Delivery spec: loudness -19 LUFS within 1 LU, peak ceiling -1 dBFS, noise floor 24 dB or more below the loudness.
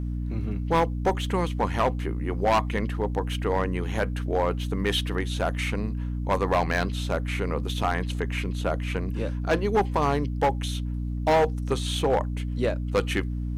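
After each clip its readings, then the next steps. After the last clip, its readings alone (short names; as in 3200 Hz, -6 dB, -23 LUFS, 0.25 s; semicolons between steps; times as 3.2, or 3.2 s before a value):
clipped 1.1%; flat tops at -16.0 dBFS; hum 60 Hz; harmonics up to 300 Hz; hum level -27 dBFS; loudness -26.5 LUFS; peak -16.0 dBFS; loudness target -19.0 LUFS
-> clip repair -16 dBFS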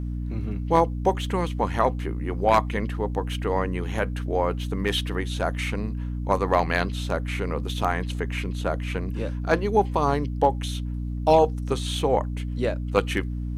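clipped 0.0%; hum 60 Hz; harmonics up to 300 Hz; hum level -27 dBFS
-> de-hum 60 Hz, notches 5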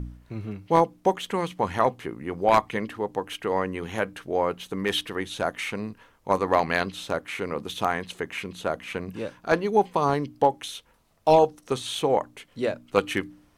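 hum none; loudness -26.5 LUFS; peak -6.0 dBFS; loudness target -19.0 LUFS
-> gain +7.5 dB; limiter -1 dBFS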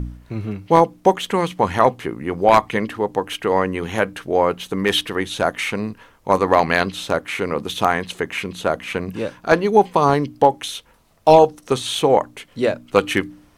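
loudness -19.5 LUFS; peak -1.0 dBFS; noise floor -53 dBFS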